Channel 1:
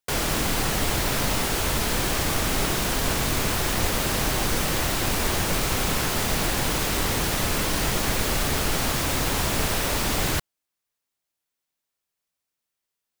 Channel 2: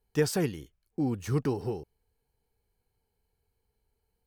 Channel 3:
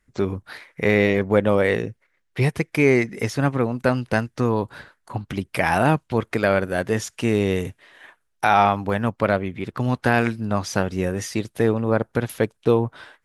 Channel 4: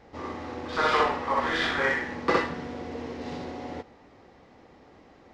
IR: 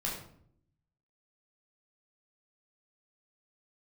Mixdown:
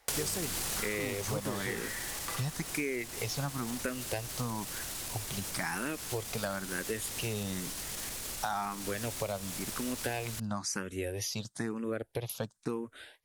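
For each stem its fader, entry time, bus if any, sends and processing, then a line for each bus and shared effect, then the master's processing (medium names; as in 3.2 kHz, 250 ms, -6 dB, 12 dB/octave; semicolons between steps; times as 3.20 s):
-0.5 dB, 0.00 s, no send, peak limiter -21.5 dBFS, peak gain reduction 10.5 dB; auto duck -14 dB, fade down 1.85 s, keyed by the third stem
-2.0 dB, 0.00 s, no send, none
-7.5 dB, 0.00 s, no send, barber-pole phaser +1 Hz
-9.0 dB, 0.00 s, no send, high-pass 760 Hz; compression, threshold -31 dBFS, peak gain reduction 10.5 dB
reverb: none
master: peaking EQ 9.5 kHz +13 dB 2.3 oct; compression 6:1, threshold -31 dBFS, peak gain reduction 12 dB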